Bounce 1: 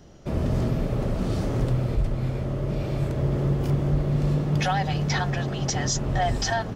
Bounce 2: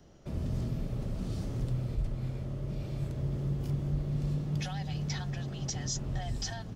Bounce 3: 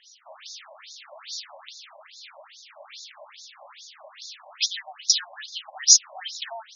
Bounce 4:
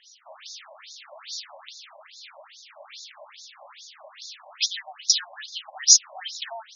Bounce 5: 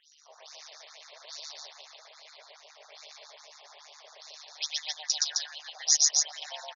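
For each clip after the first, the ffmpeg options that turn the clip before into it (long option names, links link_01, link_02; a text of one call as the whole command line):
ffmpeg -i in.wav -filter_complex "[0:a]acrossover=split=250|3000[link_01][link_02][link_03];[link_02]acompressor=threshold=-44dB:ratio=2[link_04];[link_01][link_04][link_03]amix=inputs=3:normalize=0,volume=-8dB" out.wav
ffmpeg -i in.wav -af "crystalizer=i=8:c=0,afftfilt=real='re*between(b*sr/1024,760*pow(5100/760,0.5+0.5*sin(2*PI*2.4*pts/sr))/1.41,760*pow(5100/760,0.5+0.5*sin(2*PI*2.4*pts/sr))*1.41)':imag='im*between(b*sr/1024,760*pow(5100/760,0.5+0.5*sin(2*PI*2.4*pts/sr))/1.41,760*pow(5100/760,0.5+0.5*sin(2*PI*2.4*pts/sr))*1.41)':win_size=1024:overlap=0.75,volume=7dB" out.wav
ffmpeg -i in.wav -af anull out.wav
ffmpeg -i in.wav -af "tremolo=f=150:d=0.75,aecho=1:1:119.5|262.4:1|0.794,volume=-6dB" out.wav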